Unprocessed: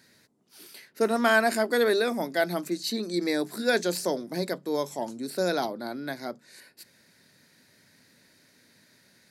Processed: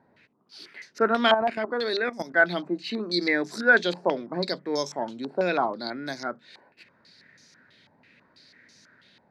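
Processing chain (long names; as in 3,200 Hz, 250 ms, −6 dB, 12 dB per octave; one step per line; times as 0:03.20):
0:01.34–0:02.34: output level in coarse steps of 14 dB
low-pass on a step sequencer 6.1 Hz 860–5,900 Hz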